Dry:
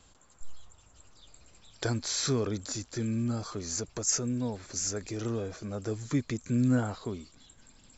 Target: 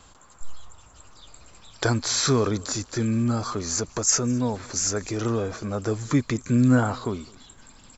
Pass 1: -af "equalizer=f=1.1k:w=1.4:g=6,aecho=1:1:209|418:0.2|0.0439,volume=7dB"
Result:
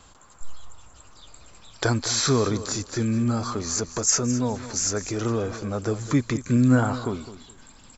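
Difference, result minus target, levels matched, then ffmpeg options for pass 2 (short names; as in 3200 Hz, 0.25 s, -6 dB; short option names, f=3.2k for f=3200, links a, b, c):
echo-to-direct +11 dB
-af "equalizer=f=1.1k:w=1.4:g=6,aecho=1:1:209|418:0.0562|0.0124,volume=7dB"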